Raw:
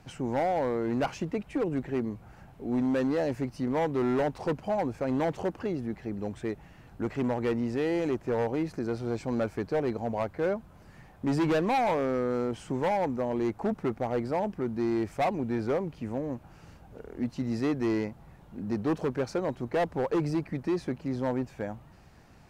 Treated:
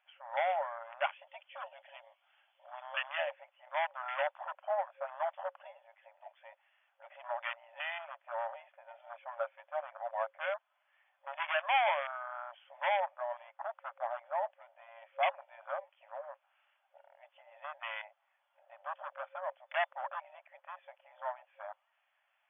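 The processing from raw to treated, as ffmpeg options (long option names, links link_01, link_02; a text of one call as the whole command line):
ffmpeg -i in.wav -filter_complex "[0:a]asettb=1/sr,asplit=3[link_01][link_02][link_03];[link_01]atrim=end=1.274[link_04];[link_02]atrim=start=1.27:end=3.26,asetpts=PTS-STARTPTS,afade=type=in:duration=0.004:curve=qsin,afade=type=out:start_time=1.986:duration=0.004:curve=qsin,equalizer=frequency=3200:width_type=o:width=0.62:gain=11.5[link_05];[link_03]atrim=start=3.256[link_06];[link_04][link_05]acrossfade=duration=0.004:curve1=hsin:curve2=qsin[link_07];[link_07][link_06]acrossfade=duration=0.004:curve1=qsin:curve2=hsin,afwtdn=0.0126,afftfilt=real='re*between(b*sr/4096,540,3500)':imag='im*between(b*sr/4096,540,3500)':win_size=4096:overlap=0.75,tiltshelf=frequency=1100:gain=-9" out.wav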